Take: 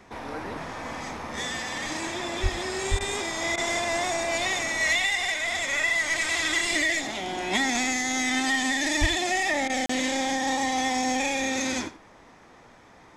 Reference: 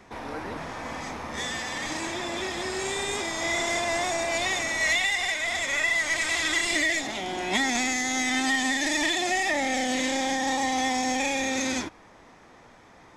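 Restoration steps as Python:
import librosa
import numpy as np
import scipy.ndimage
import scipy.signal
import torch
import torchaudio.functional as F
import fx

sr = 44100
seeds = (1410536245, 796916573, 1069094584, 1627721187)

y = fx.highpass(x, sr, hz=140.0, slope=24, at=(2.42, 2.54), fade=0.02)
y = fx.highpass(y, sr, hz=140.0, slope=24, at=(2.9, 3.02), fade=0.02)
y = fx.highpass(y, sr, hz=140.0, slope=24, at=(9.0, 9.12), fade=0.02)
y = fx.fix_interpolate(y, sr, at_s=(9.86,), length_ms=34.0)
y = fx.fix_interpolate(y, sr, at_s=(2.99, 3.56, 9.68), length_ms=15.0)
y = fx.fix_echo_inverse(y, sr, delay_ms=86, level_db=-15.5)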